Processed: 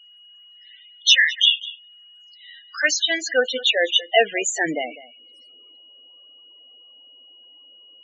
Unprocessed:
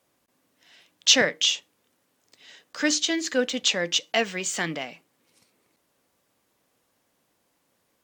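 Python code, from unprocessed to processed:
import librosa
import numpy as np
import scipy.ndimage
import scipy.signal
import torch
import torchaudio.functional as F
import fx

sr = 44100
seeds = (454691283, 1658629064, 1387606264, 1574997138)

p1 = x + 10.0 ** (-56.0 / 20.0) * np.sin(2.0 * np.pi * 2900.0 * np.arange(len(x)) / sr)
p2 = fx.filter_sweep_highpass(p1, sr, from_hz=1500.0, to_hz=310.0, start_s=1.86, end_s=4.77, q=0.92)
p3 = p2 + fx.echo_single(p2, sr, ms=200, db=-17.5, dry=0)
p4 = fx.spec_topn(p3, sr, count=16)
y = p4 * librosa.db_to_amplitude(8.5)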